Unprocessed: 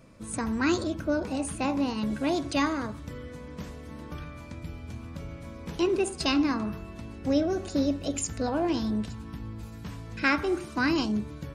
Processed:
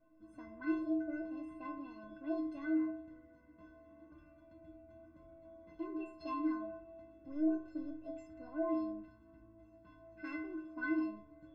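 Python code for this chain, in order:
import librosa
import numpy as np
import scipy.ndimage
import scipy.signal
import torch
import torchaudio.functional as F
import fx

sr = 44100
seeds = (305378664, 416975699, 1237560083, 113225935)

y = scipy.signal.sosfilt(scipy.signal.butter(2, 1400.0, 'lowpass', fs=sr, output='sos'), x)
y = 10.0 ** (-17.5 / 20.0) * np.tanh(y / 10.0 ** (-17.5 / 20.0))
y = fx.stiff_resonator(y, sr, f0_hz=310.0, decay_s=0.74, stiffness=0.03)
y = y * librosa.db_to_amplitude(7.0)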